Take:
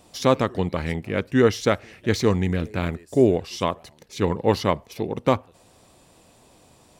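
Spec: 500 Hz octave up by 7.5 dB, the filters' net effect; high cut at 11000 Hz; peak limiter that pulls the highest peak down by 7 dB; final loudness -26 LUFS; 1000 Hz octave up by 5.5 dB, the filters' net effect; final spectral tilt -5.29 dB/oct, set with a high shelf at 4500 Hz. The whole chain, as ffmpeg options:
-af "lowpass=11k,equalizer=f=500:t=o:g=8,equalizer=f=1k:t=o:g=4,highshelf=f=4.5k:g=6.5,volume=-6dB,alimiter=limit=-11dB:level=0:latency=1"

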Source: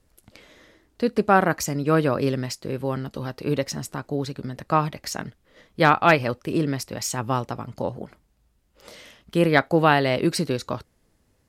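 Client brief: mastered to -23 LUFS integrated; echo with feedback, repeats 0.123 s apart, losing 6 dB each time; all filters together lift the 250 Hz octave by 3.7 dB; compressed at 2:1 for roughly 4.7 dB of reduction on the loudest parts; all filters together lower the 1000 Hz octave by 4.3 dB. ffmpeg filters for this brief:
-af "equalizer=f=250:t=o:g=5.5,equalizer=f=1k:t=o:g=-6.5,acompressor=threshold=-21dB:ratio=2,aecho=1:1:123|246|369|492|615|738:0.501|0.251|0.125|0.0626|0.0313|0.0157,volume=2dB"

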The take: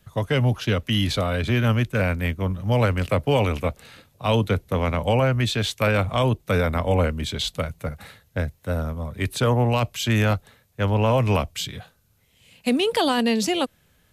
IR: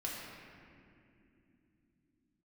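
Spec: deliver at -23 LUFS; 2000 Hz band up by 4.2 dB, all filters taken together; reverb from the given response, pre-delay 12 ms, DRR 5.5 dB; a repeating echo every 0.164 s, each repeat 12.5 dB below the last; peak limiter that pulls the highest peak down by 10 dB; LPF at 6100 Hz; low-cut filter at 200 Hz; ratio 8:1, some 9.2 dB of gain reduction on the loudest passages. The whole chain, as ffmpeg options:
-filter_complex "[0:a]highpass=200,lowpass=6.1k,equalizer=f=2k:t=o:g=5.5,acompressor=threshold=-26dB:ratio=8,alimiter=limit=-22dB:level=0:latency=1,aecho=1:1:164|328|492:0.237|0.0569|0.0137,asplit=2[a][b];[1:a]atrim=start_sample=2205,adelay=12[c];[b][c]afir=irnorm=-1:irlink=0,volume=-7.5dB[d];[a][d]amix=inputs=2:normalize=0,volume=9dB"

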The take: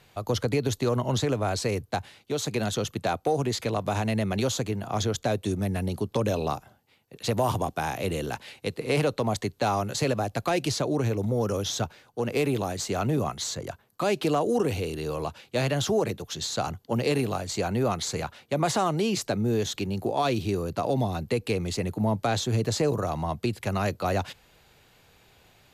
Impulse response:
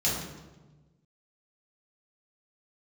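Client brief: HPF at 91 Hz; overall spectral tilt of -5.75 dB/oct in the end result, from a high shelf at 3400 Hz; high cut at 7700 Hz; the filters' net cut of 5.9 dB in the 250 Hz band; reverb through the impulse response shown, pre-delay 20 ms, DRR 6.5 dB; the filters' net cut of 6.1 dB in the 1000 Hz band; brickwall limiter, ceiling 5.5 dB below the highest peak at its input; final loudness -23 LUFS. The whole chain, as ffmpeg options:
-filter_complex "[0:a]highpass=91,lowpass=7.7k,equalizer=f=250:t=o:g=-7.5,equalizer=f=1k:t=o:g=-8,highshelf=f=3.4k:g=-6,alimiter=limit=-22.5dB:level=0:latency=1,asplit=2[a][b];[1:a]atrim=start_sample=2205,adelay=20[c];[b][c]afir=irnorm=-1:irlink=0,volume=-16.5dB[d];[a][d]amix=inputs=2:normalize=0,volume=8dB"

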